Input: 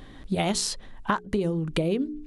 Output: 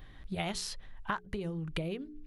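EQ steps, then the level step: graphic EQ 250/500/1000/4000/8000 Hz -11/-6/-4/-3/-10 dB; -3.5 dB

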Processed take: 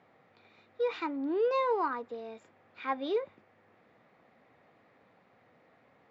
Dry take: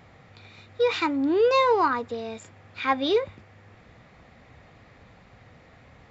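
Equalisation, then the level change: HPF 260 Hz 12 dB/oct; air absorption 74 m; high shelf 2200 Hz -8.5 dB; -7.0 dB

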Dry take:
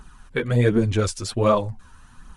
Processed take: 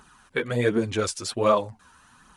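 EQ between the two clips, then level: HPF 350 Hz 6 dB/oct; 0.0 dB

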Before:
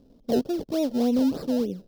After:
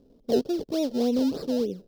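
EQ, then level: dynamic EQ 4500 Hz, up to +6 dB, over -51 dBFS, Q 0.91; bell 420 Hz +6.5 dB 0.64 oct; -3.5 dB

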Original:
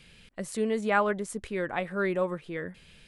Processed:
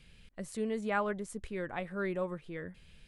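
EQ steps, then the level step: low shelf 110 Hz +11 dB; -7.5 dB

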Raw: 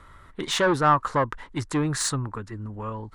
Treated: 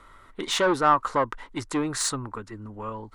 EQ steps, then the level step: bell 67 Hz -14.5 dB 0.91 oct; bell 150 Hz -8 dB 0.54 oct; notch 1700 Hz, Q 13; 0.0 dB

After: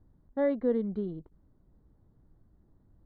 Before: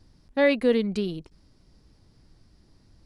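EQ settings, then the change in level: running mean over 17 samples; air absorption 300 m; -5.0 dB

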